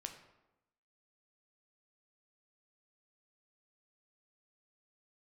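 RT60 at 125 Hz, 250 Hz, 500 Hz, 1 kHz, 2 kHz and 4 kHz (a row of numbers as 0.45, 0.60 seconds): 1.0, 1.0, 0.95, 0.95, 0.75, 0.60 seconds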